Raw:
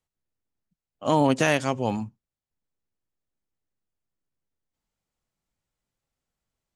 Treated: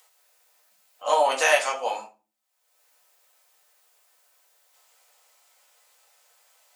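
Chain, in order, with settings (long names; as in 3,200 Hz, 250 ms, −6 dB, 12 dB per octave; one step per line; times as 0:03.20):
high-pass filter 620 Hz 24 dB per octave
high-shelf EQ 7,100 Hz +6 dB
upward compression, threshold −47 dBFS
convolution reverb RT60 0.35 s, pre-delay 4 ms, DRR −2 dB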